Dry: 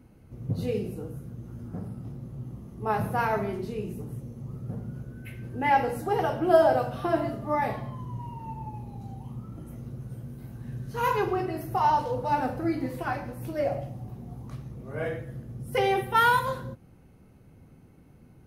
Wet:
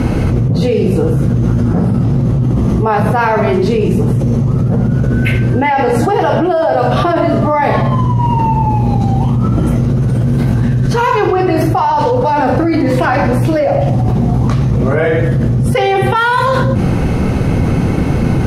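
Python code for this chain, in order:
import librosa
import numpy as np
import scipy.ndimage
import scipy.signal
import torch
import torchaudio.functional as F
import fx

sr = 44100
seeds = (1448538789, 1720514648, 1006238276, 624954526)

y = scipy.signal.sosfilt(scipy.signal.butter(2, 6900.0, 'lowpass', fs=sr, output='sos'), x)
y = fx.hum_notches(y, sr, base_hz=50, count=8)
y = fx.env_flatten(y, sr, amount_pct=100)
y = F.gain(torch.from_numpy(y), 2.5).numpy()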